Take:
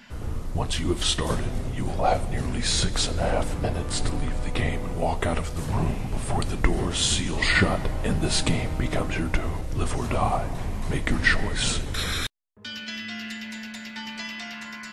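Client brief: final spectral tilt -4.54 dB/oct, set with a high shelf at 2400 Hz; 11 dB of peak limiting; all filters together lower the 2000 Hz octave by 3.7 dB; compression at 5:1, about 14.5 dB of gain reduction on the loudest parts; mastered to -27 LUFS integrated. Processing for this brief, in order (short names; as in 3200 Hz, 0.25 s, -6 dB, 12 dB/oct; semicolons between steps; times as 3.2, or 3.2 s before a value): bell 2000 Hz -3 dB; high shelf 2400 Hz -3 dB; compressor 5:1, threshold -32 dBFS; gain +11 dB; limiter -15 dBFS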